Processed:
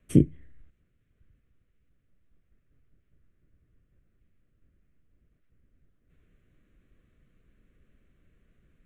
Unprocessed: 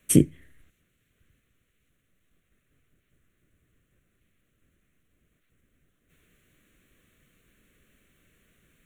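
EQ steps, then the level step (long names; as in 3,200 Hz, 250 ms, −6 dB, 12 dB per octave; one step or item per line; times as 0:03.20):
low-pass filter 1,100 Hz 6 dB per octave
low-shelf EQ 97 Hz +10.5 dB
−3.0 dB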